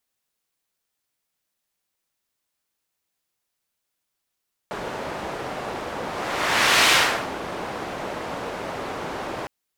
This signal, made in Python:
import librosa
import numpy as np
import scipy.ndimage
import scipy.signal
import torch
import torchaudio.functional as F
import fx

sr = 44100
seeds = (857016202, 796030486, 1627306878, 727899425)

y = fx.whoosh(sr, seeds[0], length_s=4.76, peak_s=2.19, rise_s=0.92, fall_s=0.44, ends_hz=680.0, peak_hz=2400.0, q=0.77, swell_db=15.0)